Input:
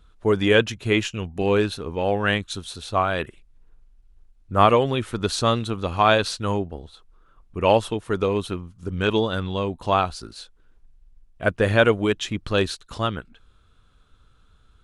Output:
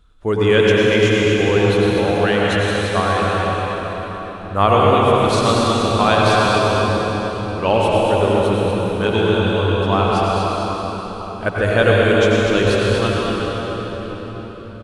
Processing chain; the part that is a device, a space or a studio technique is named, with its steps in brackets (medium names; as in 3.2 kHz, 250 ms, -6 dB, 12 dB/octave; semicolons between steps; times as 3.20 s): cave (delay 243 ms -8.5 dB; reverberation RT60 5.1 s, pre-delay 84 ms, DRR -5 dB)